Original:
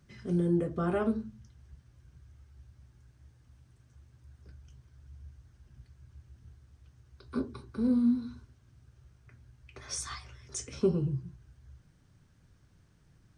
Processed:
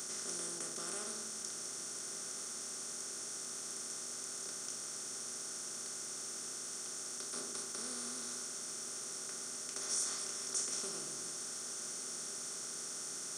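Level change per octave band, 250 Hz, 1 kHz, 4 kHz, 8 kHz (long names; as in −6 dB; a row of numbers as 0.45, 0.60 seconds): −21.0, −4.5, +9.0, +12.0 decibels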